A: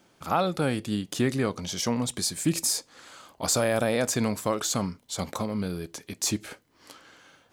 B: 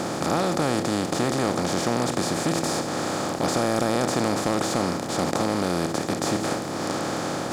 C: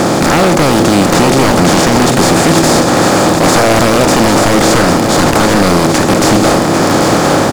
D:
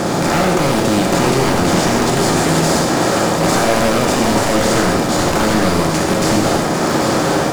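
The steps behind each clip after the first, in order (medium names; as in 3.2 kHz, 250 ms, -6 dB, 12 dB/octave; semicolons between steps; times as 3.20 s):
spectral levelling over time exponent 0.2; low-pass 3.4 kHz 6 dB/octave; waveshaping leveller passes 1; trim -8.5 dB
in parallel at -9 dB: decimation with a swept rate 11×, swing 100% 1.6 Hz; on the sum: sine folder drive 10 dB, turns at -7.5 dBFS; delay 799 ms -7.5 dB; trim +3 dB
reverberation, pre-delay 3 ms, DRR 0.5 dB; trim -8.5 dB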